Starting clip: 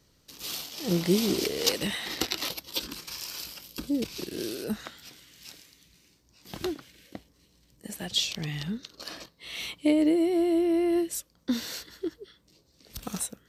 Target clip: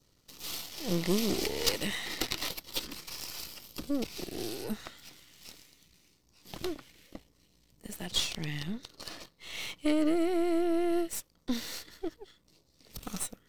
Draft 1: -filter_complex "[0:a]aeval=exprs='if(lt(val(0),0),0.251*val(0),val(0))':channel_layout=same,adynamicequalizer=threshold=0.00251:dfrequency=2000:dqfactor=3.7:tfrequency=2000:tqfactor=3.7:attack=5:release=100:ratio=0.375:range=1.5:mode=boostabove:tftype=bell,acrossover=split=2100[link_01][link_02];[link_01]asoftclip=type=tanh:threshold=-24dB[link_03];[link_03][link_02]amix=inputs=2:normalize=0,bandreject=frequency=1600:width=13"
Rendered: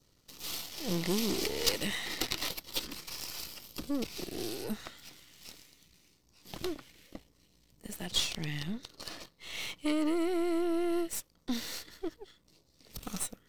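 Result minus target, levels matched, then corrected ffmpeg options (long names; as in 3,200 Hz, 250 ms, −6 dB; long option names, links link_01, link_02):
soft clipping: distortion +8 dB
-filter_complex "[0:a]aeval=exprs='if(lt(val(0),0),0.251*val(0),val(0))':channel_layout=same,adynamicequalizer=threshold=0.00251:dfrequency=2000:dqfactor=3.7:tfrequency=2000:tqfactor=3.7:attack=5:release=100:ratio=0.375:range=1.5:mode=boostabove:tftype=bell,acrossover=split=2100[link_01][link_02];[link_01]asoftclip=type=tanh:threshold=-17.5dB[link_03];[link_03][link_02]amix=inputs=2:normalize=0,bandreject=frequency=1600:width=13"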